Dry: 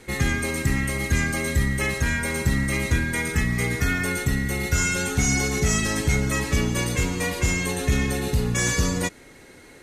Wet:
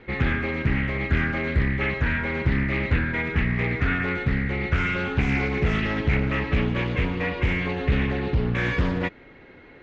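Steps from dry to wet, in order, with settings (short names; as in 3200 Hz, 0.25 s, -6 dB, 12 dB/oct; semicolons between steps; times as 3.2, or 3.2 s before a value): inverse Chebyshev low-pass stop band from 11000 Hz, stop band 70 dB; Doppler distortion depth 0.53 ms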